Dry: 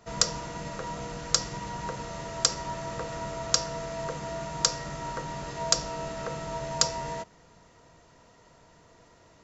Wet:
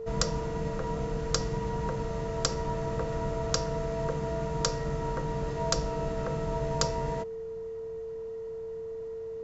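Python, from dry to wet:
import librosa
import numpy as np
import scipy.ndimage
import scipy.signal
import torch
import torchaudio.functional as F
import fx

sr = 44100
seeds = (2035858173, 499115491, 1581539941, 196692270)

y = fx.tilt_eq(x, sr, slope=-2.5)
y = y + 10.0 ** (-34.0 / 20.0) * np.sin(2.0 * np.pi * 450.0 * np.arange(len(y)) / sr)
y = F.gain(torch.from_numpy(y), -1.0).numpy()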